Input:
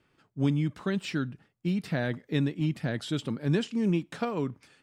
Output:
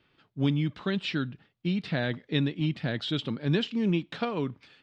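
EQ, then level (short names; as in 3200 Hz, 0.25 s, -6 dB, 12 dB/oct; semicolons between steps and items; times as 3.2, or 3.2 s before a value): synth low-pass 3700 Hz, resonance Q 2.2; 0.0 dB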